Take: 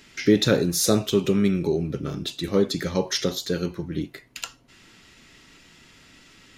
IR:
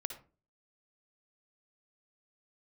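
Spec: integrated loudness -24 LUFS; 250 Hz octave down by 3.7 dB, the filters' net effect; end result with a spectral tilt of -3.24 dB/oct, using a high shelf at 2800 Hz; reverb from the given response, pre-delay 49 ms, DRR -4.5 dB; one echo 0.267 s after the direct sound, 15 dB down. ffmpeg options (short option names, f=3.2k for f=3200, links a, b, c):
-filter_complex "[0:a]equalizer=f=250:t=o:g=-5.5,highshelf=f=2.8k:g=9,aecho=1:1:267:0.178,asplit=2[a][b];[1:a]atrim=start_sample=2205,adelay=49[c];[b][c]afir=irnorm=-1:irlink=0,volume=5dB[d];[a][d]amix=inputs=2:normalize=0,volume=-7.5dB"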